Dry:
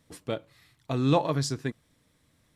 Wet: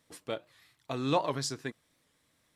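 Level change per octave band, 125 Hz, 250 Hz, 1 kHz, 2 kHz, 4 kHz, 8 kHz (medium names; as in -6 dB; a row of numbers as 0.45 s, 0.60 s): -10.5 dB, -7.0 dB, -2.0 dB, -2.0 dB, -1.5 dB, -1.5 dB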